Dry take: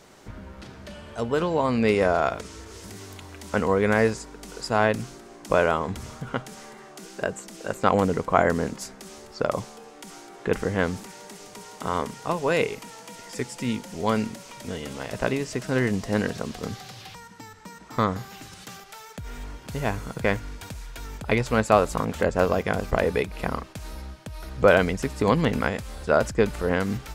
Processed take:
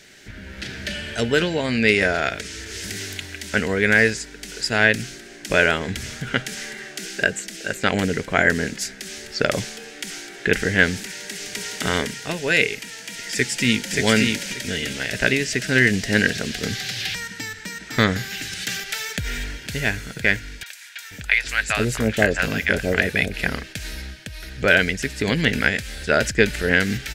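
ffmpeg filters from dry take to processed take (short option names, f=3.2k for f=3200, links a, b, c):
-filter_complex "[0:a]asplit=2[a][b];[b]afade=t=in:st=13.32:d=0.01,afade=t=out:st=13.95:d=0.01,aecho=0:1:580|1160|1740:0.749894|0.149979|0.0299958[c];[a][c]amix=inputs=2:normalize=0,asettb=1/sr,asplit=3[d][e][f];[d]atrim=end=20.634[g];[e]atrim=start=20.63:end=23.34,asetpts=PTS-STARTPTS,afade=t=in:d=0.004:c=qsin,afade=t=out:st=2.706:d=0.004:c=qsin,acrossover=split=790|4800[h][i][j];[j]adelay=30[k];[h]adelay=480[l];[l][i][k]amix=inputs=3:normalize=0,atrim=end_sample=119511[m];[f]atrim=start=23.336[n];[g][m]acrossfade=d=0.004:c1=hsin:c2=qsin[o];[o][n]acrossfade=d=0.004:c1=qsin:c2=hsin,firequalizer=gain_entry='entry(460,0);entry(1100,-13);entry(1600,11);entry(9500,5)':delay=0.05:min_phase=1,dynaudnorm=f=110:g=11:m=11.5dB,bandreject=f=500:w=12,volume=-1dB"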